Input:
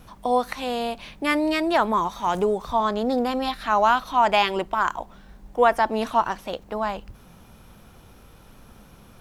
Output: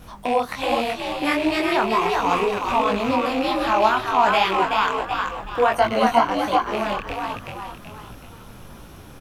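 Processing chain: rattle on loud lows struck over -36 dBFS, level -19 dBFS; in parallel at +2.5 dB: compression, threshold -31 dBFS, peak gain reduction 17 dB; 5.73–6.26 s: on the sum: rippled EQ curve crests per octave 1.9, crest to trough 16 dB; frequency-shifting echo 378 ms, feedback 43%, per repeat +67 Hz, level -4 dB; detune thickener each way 47 cents; trim +1.5 dB

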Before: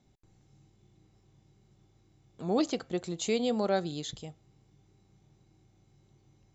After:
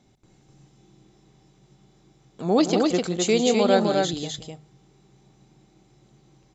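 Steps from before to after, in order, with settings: bass shelf 85 Hz -6.5 dB; hum notches 50/100/150 Hz; loudspeakers at several distances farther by 59 m -11 dB, 87 m -3 dB; trim +8.5 dB; SBC 128 kbps 32 kHz

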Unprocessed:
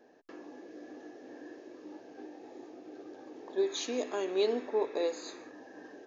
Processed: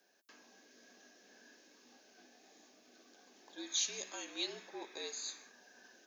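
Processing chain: frequency shift -59 Hz; differentiator; trim +7.5 dB

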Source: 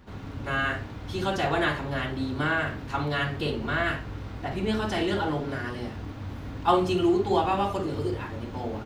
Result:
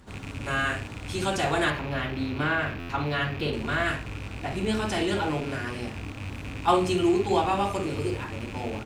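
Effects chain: rattle on loud lows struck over -38 dBFS, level -30 dBFS; peaking EQ 8.4 kHz +13.5 dB 0.81 oct, from 1.70 s -4 dB, from 3.53 s +9.5 dB; buffer glitch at 2.79 s, samples 512, times 8

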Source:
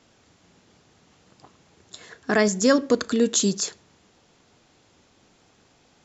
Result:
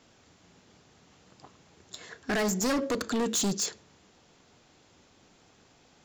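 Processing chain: de-hum 109.5 Hz, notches 5; overload inside the chain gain 24 dB; trim -1 dB

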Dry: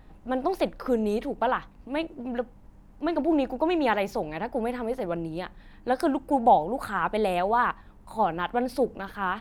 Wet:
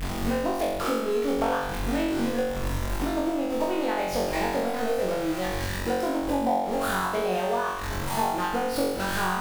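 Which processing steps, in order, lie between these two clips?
jump at every zero crossing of -27 dBFS; compression 10:1, threshold -28 dBFS, peak gain reduction 15.5 dB; transient shaper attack +5 dB, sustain -9 dB; on a send: flutter echo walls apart 3.7 m, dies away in 1 s; on the sum: trim -1 dB

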